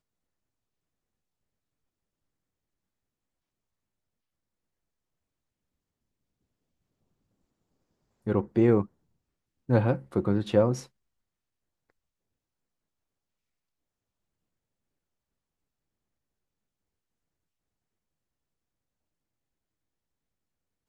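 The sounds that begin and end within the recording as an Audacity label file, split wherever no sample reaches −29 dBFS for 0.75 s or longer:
8.270000	8.830000	sound
9.690000	10.790000	sound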